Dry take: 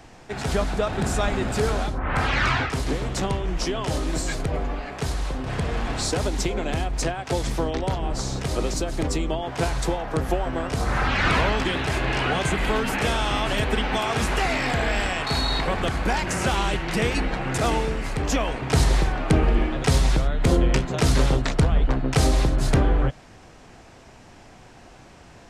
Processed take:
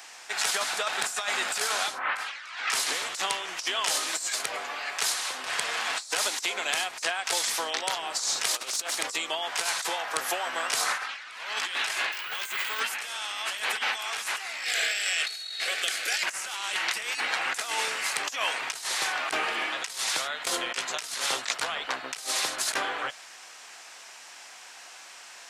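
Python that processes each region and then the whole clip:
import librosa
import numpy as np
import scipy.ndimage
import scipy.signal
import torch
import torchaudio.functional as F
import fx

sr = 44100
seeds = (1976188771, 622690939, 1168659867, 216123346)

y = fx.chain(x, sr, fx.peak_eq(hz=68.0, db=-14.5, octaves=1.5),
    fx.over_compress(threshold_db=-31.0, ratio=-0.5),
    fx.doppler_dist(depth_ms=0.36), at=(8.52, 8.95))
y = fx.chain(y, sr, fx.peak_eq(hz=720.0, db=-6.5, octaves=0.42),
    fx.resample_bad(factor=2, down='filtered', up='hold'), at=(12.12, 12.8))
y = fx.chain(y, sr, fx.low_shelf(hz=350.0, db=-6.5),
    fx.fixed_phaser(hz=400.0, stages=4), at=(14.64, 16.23))
y = scipy.signal.sosfilt(scipy.signal.butter(2, 1200.0, 'highpass', fs=sr, output='sos'), y)
y = fx.high_shelf(y, sr, hz=4200.0, db=8.5)
y = fx.over_compress(y, sr, threshold_db=-31.0, ratio=-0.5)
y = y * 10.0 ** (2.0 / 20.0)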